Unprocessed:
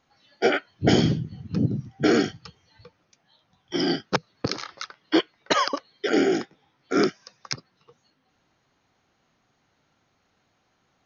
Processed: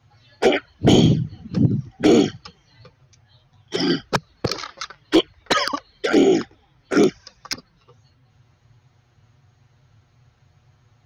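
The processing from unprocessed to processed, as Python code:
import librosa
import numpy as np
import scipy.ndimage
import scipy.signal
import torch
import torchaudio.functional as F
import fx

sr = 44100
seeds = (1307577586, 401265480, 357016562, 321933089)

y = np.clip(10.0 ** (13.0 / 20.0) * x, -1.0, 1.0) / 10.0 ** (13.0 / 20.0)
y = fx.dmg_noise_band(y, sr, seeds[0], low_hz=43.0, high_hz=140.0, level_db=-61.0)
y = fx.env_flanger(y, sr, rest_ms=8.6, full_db=-17.0)
y = F.gain(torch.from_numpy(y), 7.0).numpy()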